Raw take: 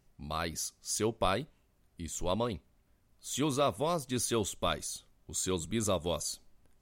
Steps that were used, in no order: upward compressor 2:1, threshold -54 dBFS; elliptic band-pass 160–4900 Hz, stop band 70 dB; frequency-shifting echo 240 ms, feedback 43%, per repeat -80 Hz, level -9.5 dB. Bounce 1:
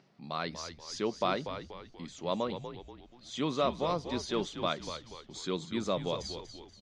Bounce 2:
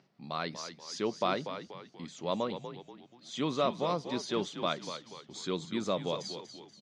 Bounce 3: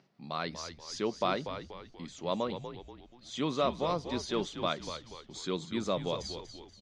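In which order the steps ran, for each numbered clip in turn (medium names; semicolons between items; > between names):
elliptic band-pass > upward compressor > frequency-shifting echo; upward compressor > frequency-shifting echo > elliptic band-pass; upward compressor > elliptic band-pass > frequency-shifting echo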